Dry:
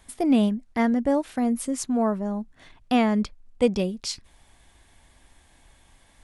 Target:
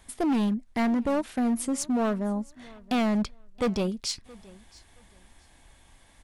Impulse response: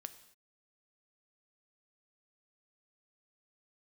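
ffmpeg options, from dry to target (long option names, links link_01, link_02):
-filter_complex "[0:a]asoftclip=type=hard:threshold=-22dB,asplit=2[link_01][link_02];[link_02]aecho=0:1:672|1344:0.0708|0.0156[link_03];[link_01][link_03]amix=inputs=2:normalize=0"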